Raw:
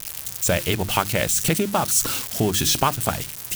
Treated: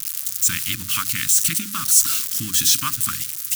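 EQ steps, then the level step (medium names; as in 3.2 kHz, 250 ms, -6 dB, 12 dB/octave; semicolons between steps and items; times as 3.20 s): elliptic band-stop 280–1200 Hz, stop band 40 dB; tone controls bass -12 dB, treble +7 dB; peaking EQ 120 Hz +5.5 dB 0.77 oct; -1.0 dB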